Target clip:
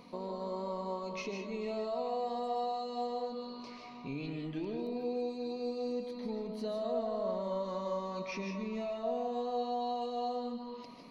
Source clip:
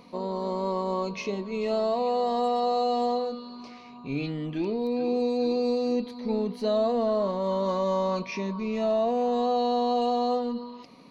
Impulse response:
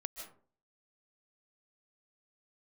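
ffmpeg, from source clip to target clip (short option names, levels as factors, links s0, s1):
-filter_complex "[0:a]acompressor=threshold=0.0158:ratio=2.5[s0];[1:a]atrim=start_sample=2205[s1];[s0][s1]afir=irnorm=-1:irlink=0"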